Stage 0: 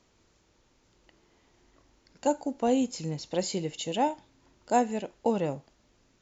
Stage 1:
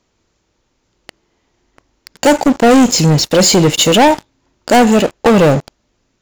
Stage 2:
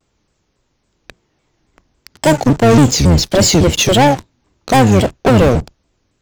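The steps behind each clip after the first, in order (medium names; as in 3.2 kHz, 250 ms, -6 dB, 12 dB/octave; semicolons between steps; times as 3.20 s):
waveshaping leveller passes 5; in parallel at +1 dB: peak limiter -23 dBFS, peak gain reduction 11 dB; on the sum: trim +5.5 dB
octave divider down 1 oct, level 0 dB; vibrato with a chosen wave saw down 3.6 Hz, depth 250 cents; trim -2 dB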